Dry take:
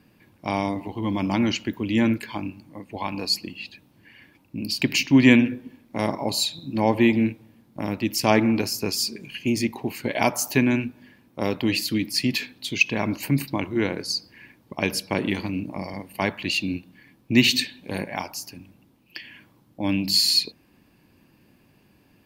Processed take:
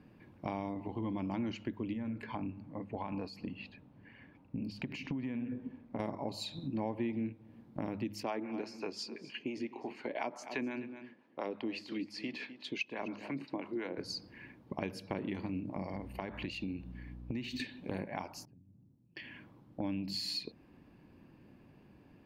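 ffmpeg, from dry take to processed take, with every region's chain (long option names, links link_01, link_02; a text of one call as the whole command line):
ffmpeg -i in.wav -filter_complex "[0:a]asettb=1/sr,asplit=3[link_01][link_02][link_03];[link_01]atrim=end=1.934[link_04];[link_02]atrim=start=1.93:end=6,asetpts=PTS-STARTPTS,afade=type=in:duration=0.004:curve=qsin,afade=type=out:start_time=4.066:duration=0.004:curve=qsin,bandreject=frequency=340:width=6.6,acompressor=threshold=-27dB:ratio=5:attack=3.2:release=140:knee=1:detection=peak,highshelf=frequency=3300:gain=-10[link_05];[link_03]atrim=start=5.996[link_06];[link_04][link_05]acrossfade=duration=0.004:curve1=hsin:curve2=qsin[link_07];[link_07][link_06]acrossfade=duration=0.004:curve1=qsin:curve2=hsin,asettb=1/sr,asplit=3[link_08][link_09][link_10];[link_08]atrim=end=8.234[link_11];[link_09]atrim=start=8.23:end=13.98,asetpts=PTS-STARTPTS,afade=type=in:duration=0.004:curve=qsin,afade=type=out:start_time=5.746:duration=0.004:curve=qsin,acrossover=split=620[link_12][link_13];[link_12]aeval=exprs='val(0)*(1-0.7/2+0.7/2*cos(2*PI*5.8*n/s))':channel_layout=same[link_14];[link_13]aeval=exprs='val(0)*(1-0.7/2-0.7/2*cos(2*PI*5.8*n/s))':channel_layout=same[link_15];[link_14][link_15]amix=inputs=2:normalize=0,highpass=310,lowpass=6000,aecho=1:1:254:0.126,atrim=end_sample=253575[link_16];[link_10]atrim=start=13.976[link_17];[link_11][link_16]acrossfade=duration=0.004:curve1=hsin:curve2=qsin[link_18];[link_18][link_17]acrossfade=duration=0.004:curve1=qsin:curve2=hsin,asettb=1/sr,asplit=3[link_19][link_20][link_21];[link_19]atrim=end=15.954[link_22];[link_20]atrim=start=15.95:end=17.6,asetpts=PTS-STARTPTS,afade=type=in:duration=0.004:curve=qsin,afade=type=out:start_time=1.646:duration=0.004:curve=qsin,aeval=exprs='val(0)+0.00501*(sin(2*PI*60*n/s)+sin(2*PI*2*60*n/s)/2+sin(2*PI*3*60*n/s)/3+sin(2*PI*4*60*n/s)/4+sin(2*PI*5*60*n/s)/5)':channel_layout=same,acompressor=threshold=-30dB:ratio=4:attack=3.2:release=140:knee=1:detection=peak[link_23];[link_21]atrim=start=17.596[link_24];[link_22][link_23]acrossfade=duration=0.004:curve1=hsin:curve2=qsin[link_25];[link_25][link_24]acrossfade=duration=0.004:curve1=qsin:curve2=hsin,asettb=1/sr,asplit=3[link_26][link_27][link_28];[link_26]atrim=end=18.454[link_29];[link_27]atrim=start=18.45:end=19.17,asetpts=PTS-STARTPTS,afade=type=in:duration=0.004:curve=qsin,afade=type=out:start_time=0.716:duration=0.004:curve=qsin,bandpass=frequency=120:width_type=q:width=1.5,acompressor=threshold=-57dB:ratio=6:attack=3.2:release=140:knee=1:detection=peak[link_30];[link_28]atrim=start=19.166[link_31];[link_29][link_30]acrossfade=duration=0.004:curve1=hsin:curve2=qsin[link_32];[link_32][link_31]acrossfade=duration=0.004:curve1=qsin:curve2=hsin,lowpass=frequency=1200:poles=1,bandreject=frequency=103.1:width_type=h:width=4,bandreject=frequency=206.2:width_type=h:width=4,acompressor=threshold=-36dB:ratio=4" out.wav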